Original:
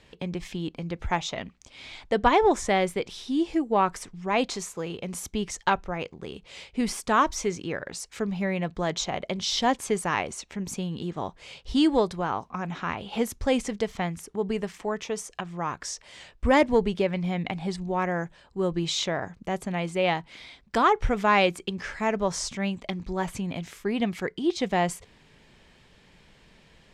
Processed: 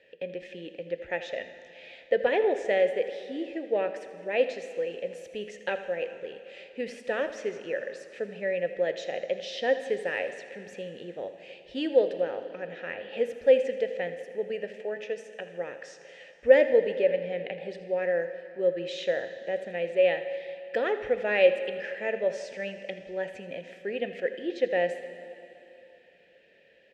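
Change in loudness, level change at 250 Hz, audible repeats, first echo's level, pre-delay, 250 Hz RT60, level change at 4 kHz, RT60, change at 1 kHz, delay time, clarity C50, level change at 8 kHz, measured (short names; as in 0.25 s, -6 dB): -1.5 dB, -11.0 dB, 2, -15.5 dB, 5 ms, 2.9 s, -8.5 dB, 2.9 s, -12.5 dB, 81 ms, 9.5 dB, under -15 dB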